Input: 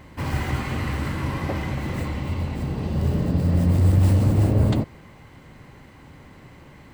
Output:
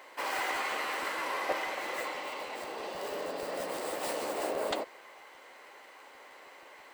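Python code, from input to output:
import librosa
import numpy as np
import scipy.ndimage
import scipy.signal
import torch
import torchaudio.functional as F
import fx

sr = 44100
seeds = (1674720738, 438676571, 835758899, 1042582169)

y = scipy.signal.sosfilt(scipy.signal.butter(4, 480.0, 'highpass', fs=sr, output='sos'), x)
y = fx.buffer_crackle(y, sr, first_s=0.38, period_s=0.16, block=512, kind='repeat')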